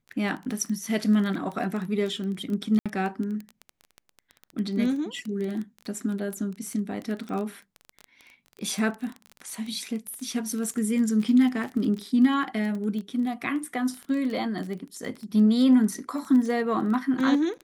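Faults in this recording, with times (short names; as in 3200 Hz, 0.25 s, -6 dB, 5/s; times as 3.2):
crackle 15/s -30 dBFS
2.79–2.86 gap 66 ms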